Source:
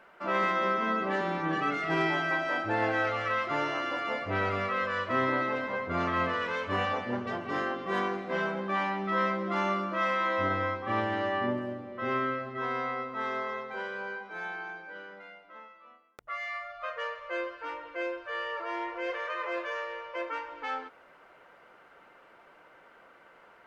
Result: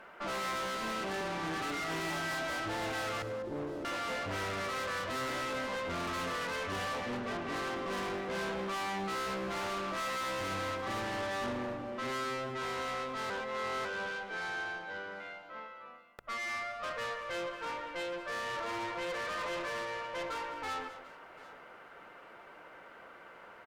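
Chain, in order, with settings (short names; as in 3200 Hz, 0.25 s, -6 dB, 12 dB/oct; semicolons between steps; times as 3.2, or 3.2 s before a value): 3.22–3.85 steep low-pass 530 Hz 48 dB/oct; tube stage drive 40 dB, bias 0.4; tapped delay 0.105/0.202/0.74 s -18/-15/-19 dB; 13.3–13.85 reverse; gain +5 dB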